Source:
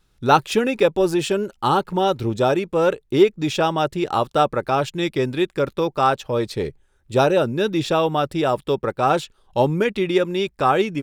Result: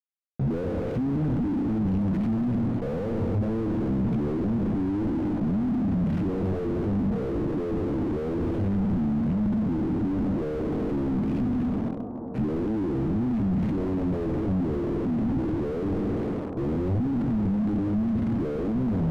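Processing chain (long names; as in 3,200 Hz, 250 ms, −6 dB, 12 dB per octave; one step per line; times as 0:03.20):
peak hold with a decay on every bin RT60 0.78 s
elliptic high-pass filter 160 Hz, stop band 40 dB
flat-topped bell 2,100 Hz −13 dB
mains-hum notches 50/100/150/200/250/300/350 Hz
in parallel at −2 dB: brickwall limiter −11 dBFS, peak gain reduction 8.5 dB
on the sum: automatic gain control
fuzz pedal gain 41 dB, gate −31 dBFS
high-frequency loss of the air 390 metres
on a send: bucket-brigade delay 341 ms, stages 4,096, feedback 67%, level −13.5 dB
on the sum: wrong playback speed 78 rpm record played at 45 rpm
slew-rate limiting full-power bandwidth 38 Hz
level −7.5 dB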